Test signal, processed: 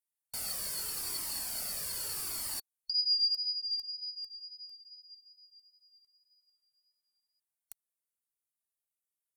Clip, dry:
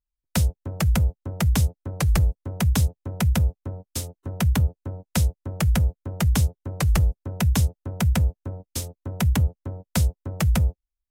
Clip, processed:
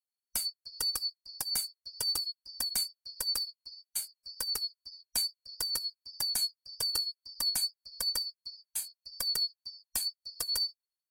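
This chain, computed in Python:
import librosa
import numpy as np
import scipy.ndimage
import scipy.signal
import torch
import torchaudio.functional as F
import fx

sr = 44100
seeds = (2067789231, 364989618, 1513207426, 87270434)

y = fx.band_shuffle(x, sr, order='2341')
y = fx.high_shelf_res(y, sr, hz=6900.0, db=11.0, q=1.5)
y = fx.wow_flutter(y, sr, seeds[0], rate_hz=2.1, depth_cents=22.0)
y = fx.comb_cascade(y, sr, direction='falling', hz=0.82)
y = y * 10.0 ** (-8.0 / 20.0)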